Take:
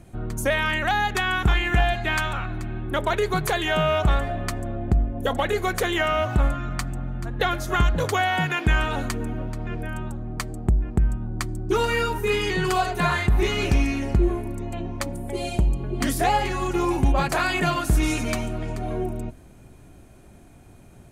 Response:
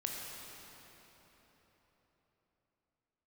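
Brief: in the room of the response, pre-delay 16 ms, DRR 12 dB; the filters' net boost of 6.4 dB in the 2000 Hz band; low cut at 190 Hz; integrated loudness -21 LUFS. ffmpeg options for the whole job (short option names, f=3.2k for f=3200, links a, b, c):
-filter_complex "[0:a]highpass=190,equalizer=f=2k:t=o:g=8,asplit=2[a][b];[1:a]atrim=start_sample=2205,adelay=16[c];[b][c]afir=irnorm=-1:irlink=0,volume=-14dB[d];[a][d]amix=inputs=2:normalize=0,volume=1dB"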